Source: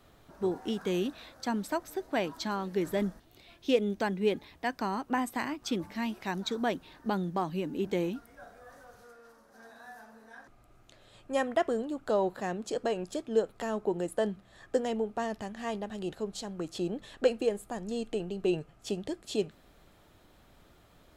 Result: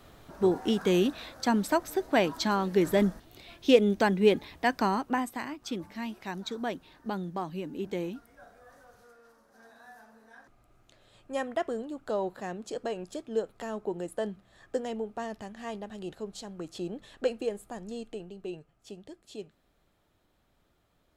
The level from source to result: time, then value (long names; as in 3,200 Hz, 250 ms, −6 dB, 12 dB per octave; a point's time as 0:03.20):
0:04.87 +6 dB
0:05.39 −3 dB
0:17.83 −3 dB
0:18.59 −11 dB